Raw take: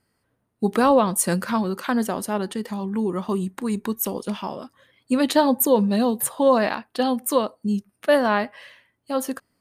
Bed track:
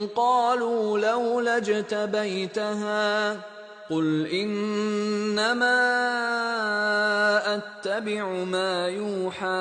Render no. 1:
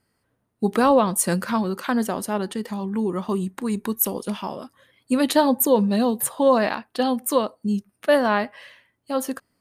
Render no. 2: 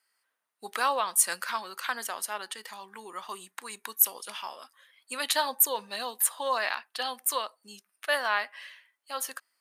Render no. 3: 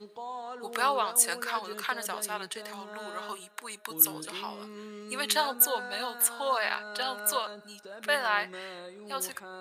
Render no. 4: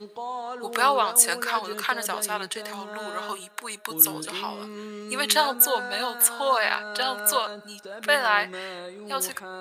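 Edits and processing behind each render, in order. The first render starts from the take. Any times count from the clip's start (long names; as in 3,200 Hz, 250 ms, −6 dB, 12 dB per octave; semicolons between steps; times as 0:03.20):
0:03.79–0:05.49: parametric band 11,000 Hz +7 dB 0.41 octaves
high-pass filter 1,300 Hz 12 dB per octave
mix in bed track −18 dB
level +6 dB; brickwall limiter −3 dBFS, peak gain reduction 3 dB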